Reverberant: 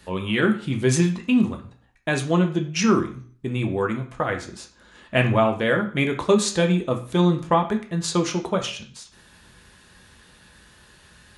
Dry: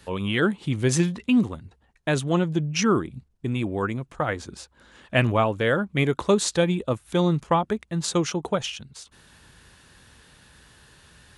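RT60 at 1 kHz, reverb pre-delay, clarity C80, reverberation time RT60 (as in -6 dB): 0.45 s, 3 ms, 15.0 dB, 0.45 s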